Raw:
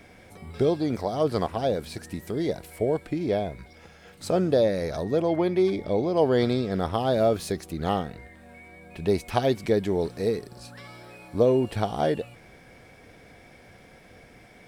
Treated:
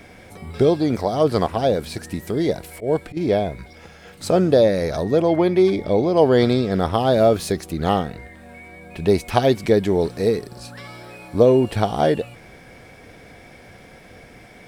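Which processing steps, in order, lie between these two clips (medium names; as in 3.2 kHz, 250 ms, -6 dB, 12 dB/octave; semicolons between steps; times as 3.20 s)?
2.36–3.17 s: slow attack 121 ms; trim +6.5 dB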